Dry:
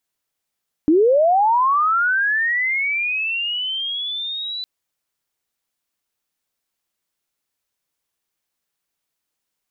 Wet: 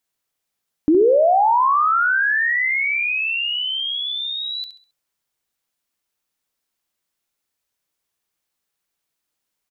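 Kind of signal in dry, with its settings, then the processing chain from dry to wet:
sweep linear 290 Hz -> 4 kHz -10.5 dBFS -> -25 dBFS 3.76 s
feedback delay 67 ms, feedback 33%, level -9.5 dB

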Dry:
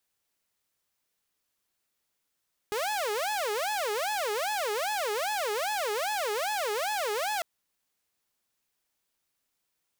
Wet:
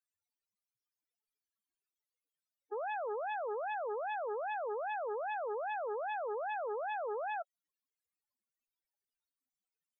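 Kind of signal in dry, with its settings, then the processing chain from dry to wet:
siren wail 411–859 Hz 2.5 per s saw -25.5 dBFS 4.70 s
peak limiter -31 dBFS; loudest bins only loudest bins 8

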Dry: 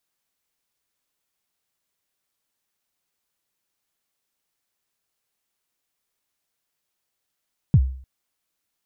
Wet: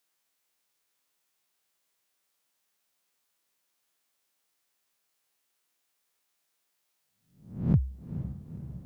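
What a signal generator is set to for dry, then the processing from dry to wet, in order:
kick drum length 0.30 s, from 170 Hz, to 65 Hz, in 57 ms, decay 0.51 s, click off, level -8 dB
reverse spectral sustain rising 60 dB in 0.52 s; bass shelf 170 Hz -11 dB; echo that smears into a reverb 480 ms, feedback 62%, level -10.5 dB

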